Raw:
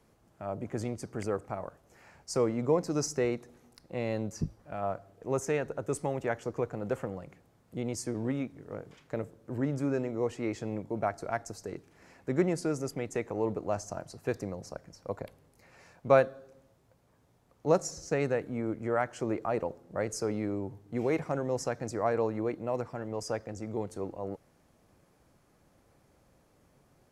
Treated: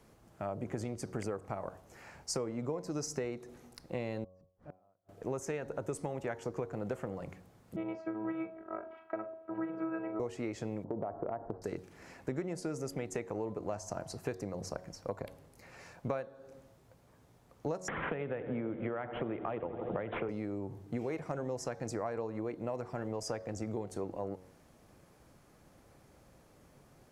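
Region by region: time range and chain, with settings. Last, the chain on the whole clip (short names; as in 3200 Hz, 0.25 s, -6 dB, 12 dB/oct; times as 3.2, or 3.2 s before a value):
4.24–5.09 LPF 1200 Hz 6 dB/oct + flipped gate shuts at -39 dBFS, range -41 dB
7.76–10.2 robotiser 324 Hz + speaker cabinet 140–2300 Hz, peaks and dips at 190 Hz -5 dB, 270 Hz -7 dB, 760 Hz +9 dB, 1300 Hz +9 dB, 1800 Hz -4 dB + flutter echo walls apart 7.2 m, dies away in 0.21 s
10.84–11.62 LPF 1200 Hz 24 dB/oct + bell 450 Hz +7.5 dB 2.1 oct + compressor 4:1, threshold -31 dBFS
17.88–20.29 darkening echo 83 ms, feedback 80%, low-pass 2300 Hz, level -15 dB + careless resampling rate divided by 6×, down none, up filtered + three-band squash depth 100%
whole clip: de-hum 92.46 Hz, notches 12; compressor 12:1, threshold -37 dBFS; gain +4 dB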